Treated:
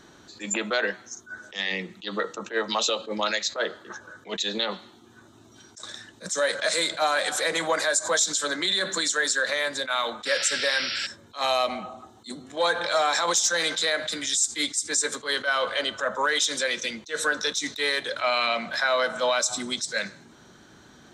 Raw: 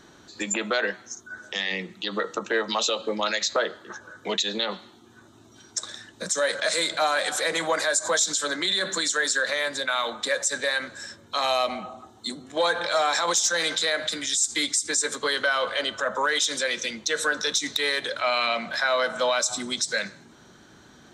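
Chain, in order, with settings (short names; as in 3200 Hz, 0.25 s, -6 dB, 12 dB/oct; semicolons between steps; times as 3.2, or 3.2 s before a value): painted sound noise, 10.25–11.07, 1300–5700 Hz -30 dBFS; attack slew limiter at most 260 dB/s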